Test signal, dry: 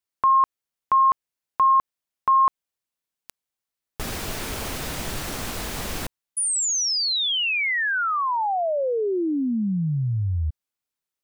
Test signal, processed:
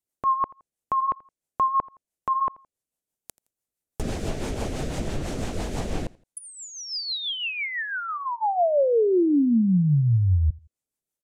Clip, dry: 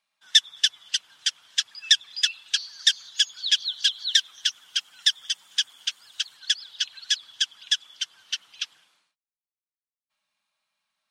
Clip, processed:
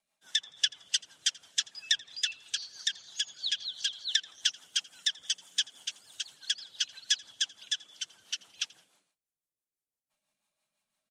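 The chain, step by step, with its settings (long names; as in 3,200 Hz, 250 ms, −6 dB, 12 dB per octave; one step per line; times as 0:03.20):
flat-topped bell 2,300 Hz −9 dB 2.7 octaves
treble cut that deepens with the level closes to 2,700 Hz, closed at −24 dBFS
rotating-speaker cabinet horn 6 Hz
on a send: repeating echo 84 ms, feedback 34%, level −23.5 dB
on the sum: level +5.5 dB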